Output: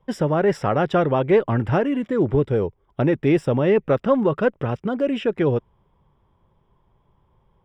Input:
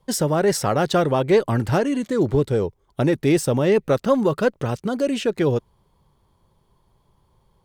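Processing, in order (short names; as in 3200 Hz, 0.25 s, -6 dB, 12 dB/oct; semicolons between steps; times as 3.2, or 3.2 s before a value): polynomial smoothing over 25 samples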